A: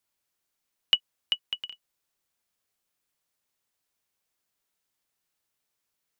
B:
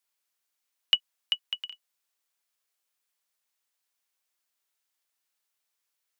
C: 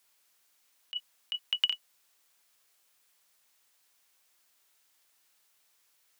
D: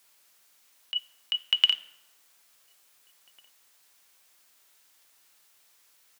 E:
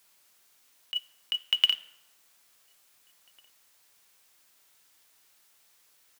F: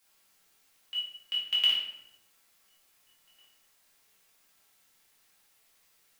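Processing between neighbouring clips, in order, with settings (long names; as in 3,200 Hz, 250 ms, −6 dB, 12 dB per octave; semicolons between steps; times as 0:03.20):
high-pass filter 870 Hz 6 dB per octave
compressor whose output falls as the input rises −35 dBFS, ratio −1; level +4.5 dB
slap from a distant wall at 300 metres, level −24 dB; convolution reverb RT60 1.1 s, pre-delay 5 ms, DRR 12.5 dB; level +6.5 dB
log-companded quantiser 6 bits; level −1.5 dB
rectangular room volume 210 cubic metres, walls mixed, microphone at 2.2 metres; level −9 dB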